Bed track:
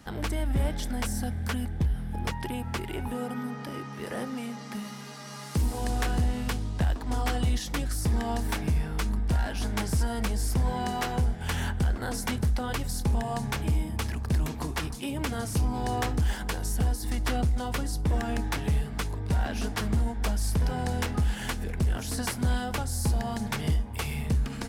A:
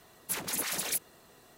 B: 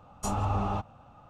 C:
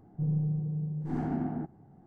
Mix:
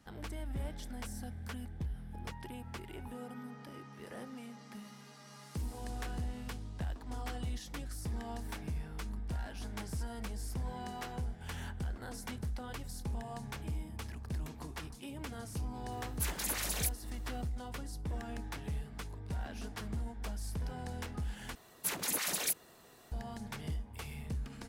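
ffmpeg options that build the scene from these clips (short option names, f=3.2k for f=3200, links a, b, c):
-filter_complex "[1:a]asplit=2[a][b];[0:a]volume=-12.5dB,asplit=2[c][d];[c]atrim=end=21.554[e];[b]atrim=end=1.57,asetpts=PTS-STARTPTS,volume=-1.5dB[f];[d]atrim=start=23.116[g];[a]atrim=end=1.57,asetpts=PTS-STARTPTS,volume=-3.5dB,afade=t=in:d=0.004:c=hsin,afade=t=out:st=1.566:d=0.004:c=hsin,adelay=15910[h];[e][f]acrossfade=d=0.004:c1=hsin:c2=hsin[i];[i][g]acrossfade=d=0.004:c1=hsin:c2=hsin[j];[j][h]amix=inputs=2:normalize=0"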